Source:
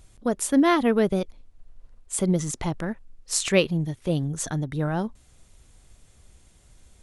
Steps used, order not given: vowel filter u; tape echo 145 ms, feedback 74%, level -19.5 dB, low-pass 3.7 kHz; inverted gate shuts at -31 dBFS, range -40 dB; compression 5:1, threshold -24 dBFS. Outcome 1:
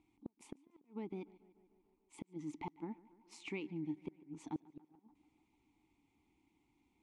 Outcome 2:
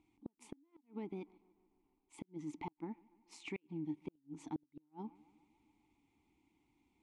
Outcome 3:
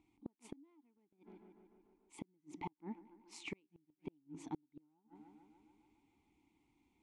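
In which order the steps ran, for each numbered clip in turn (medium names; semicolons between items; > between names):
compression > vowel filter > inverted gate > tape echo; compression > tape echo > vowel filter > inverted gate; vowel filter > tape echo > inverted gate > compression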